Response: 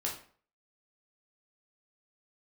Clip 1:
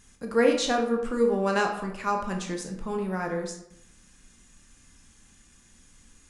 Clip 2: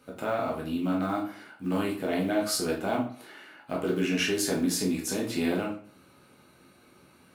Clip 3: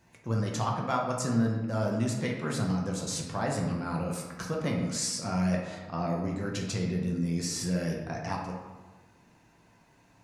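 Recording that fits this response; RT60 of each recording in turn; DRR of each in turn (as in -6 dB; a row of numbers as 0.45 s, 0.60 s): 2; 0.75 s, 0.45 s, 1.3 s; 2.5 dB, -2.5 dB, -1.5 dB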